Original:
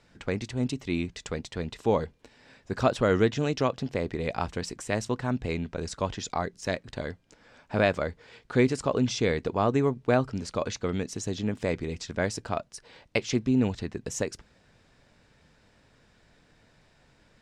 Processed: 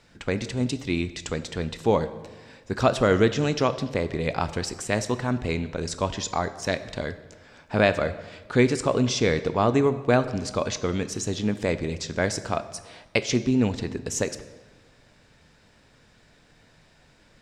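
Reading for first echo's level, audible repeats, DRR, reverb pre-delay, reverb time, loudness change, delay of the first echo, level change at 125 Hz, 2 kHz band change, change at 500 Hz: none, none, 12.0 dB, 15 ms, 1.4 s, +3.5 dB, none, +3.0 dB, +4.5 dB, +3.5 dB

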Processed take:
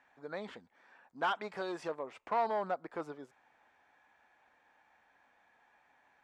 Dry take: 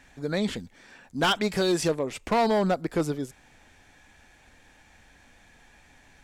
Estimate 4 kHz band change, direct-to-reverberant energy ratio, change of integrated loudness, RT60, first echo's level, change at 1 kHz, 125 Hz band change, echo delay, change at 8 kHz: -18.0 dB, none, -11.0 dB, none, none, -6.5 dB, -23.0 dB, none, under -25 dB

